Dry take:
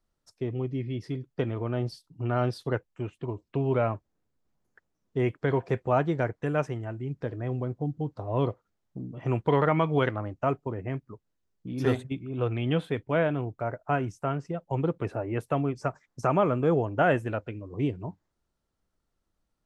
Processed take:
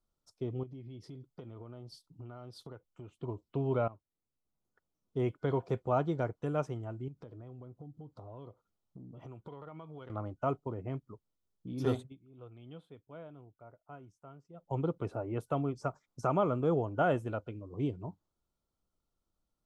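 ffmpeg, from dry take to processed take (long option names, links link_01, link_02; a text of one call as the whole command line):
ffmpeg -i in.wav -filter_complex "[0:a]asettb=1/sr,asplit=3[link_01][link_02][link_03];[link_01]atrim=end=0.634[link_04];[link_02]atrim=start=0.63:end=3.12,asetpts=PTS-STARTPTS,afade=type=in:duration=0.004:curve=qsin,afade=type=out:start_time=2.486:duration=0.004:curve=qsin,acompressor=threshold=-38dB:ratio=6:attack=3.2:release=140:knee=1:detection=peak[link_05];[link_03]atrim=start=3.116[link_06];[link_04][link_05]acrossfade=duration=0.004:curve1=hsin:curve2=qsin[link_07];[link_07][link_06]acrossfade=duration=0.004:curve1=qsin:curve2=hsin,asettb=1/sr,asplit=3[link_08][link_09][link_10];[link_08]atrim=end=7.084[link_11];[link_09]atrim=start=7.08:end=10.1,asetpts=PTS-STARTPTS,afade=type=in:duration=0.004:curve=qsin,afade=type=out:start_time=3.016:duration=0.004:curve=qsin,acompressor=threshold=-40dB:ratio=5:attack=3.2:release=140:knee=1:detection=peak[link_12];[link_10]atrim=start=10.096[link_13];[link_11][link_12]acrossfade=duration=0.004:curve1=hsin:curve2=qsin[link_14];[link_14][link_13]acrossfade=duration=0.004:curve1=qsin:curve2=hsin,asplit=4[link_15][link_16][link_17][link_18];[link_15]atrim=end=3.88,asetpts=PTS-STARTPTS,afade=type=out:start_time=3.876:duration=0.004:curve=hsin:silence=0.149624[link_19];[link_16]atrim=start=3.88:end=12.18,asetpts=PTS-STARTPTS,afade=type=in:duration=1.34:silence=0.149624,afade=type=out:start_time=8.12:duration=0.18:curve=qua:silence=0.133352[link_20];[link_17]atrim=start=12.18:end=14.49,asetpts=PTS-STARTPTS,volume=-17.5dB[link_21];[link_18]atrim=start=14.49,asetpts=PTS-STARTPTS,afade=type=in:duration=0.18:curve=qua:silence=0.133352[link_22];[link_19][link_20][link_21][link_22]concat=n=4:v=0:a=1,superequalizer=11b=0.316:12b=0.501,volume=-5.5dB" out.wav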